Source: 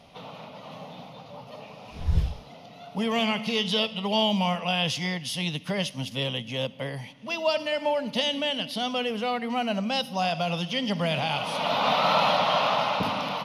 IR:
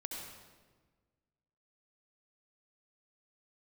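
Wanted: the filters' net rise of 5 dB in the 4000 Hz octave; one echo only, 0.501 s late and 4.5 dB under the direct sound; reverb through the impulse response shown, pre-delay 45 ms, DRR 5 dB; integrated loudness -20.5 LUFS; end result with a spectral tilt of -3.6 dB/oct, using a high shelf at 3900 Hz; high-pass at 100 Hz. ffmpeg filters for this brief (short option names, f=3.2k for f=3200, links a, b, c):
-filter_complex "[0:a]highpass=100,highshelf=f=3.9k:g=6,equalizer=f=4k:t=o:g=3.5,aecho=1:1:501:0.596,asplit=2[a][b];[1:a]atrim=start_sample=2205,adelay=45[c];[b][c]afir=irnorm=-1:irlink=0,volume=-4.5dB[d];[a][d]amix=inputs=2:normalize=0,volume=1dB"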